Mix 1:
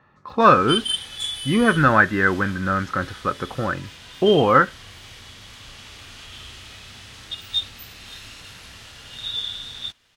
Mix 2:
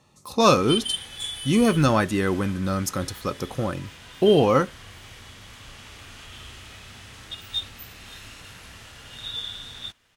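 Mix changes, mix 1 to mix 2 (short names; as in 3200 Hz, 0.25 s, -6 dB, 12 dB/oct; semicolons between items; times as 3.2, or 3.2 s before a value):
speech: remove synth low-pass 1600 Hz, resonance Q 5.5; master: add bell 4200 Hz -5.5 dB 1.2 oct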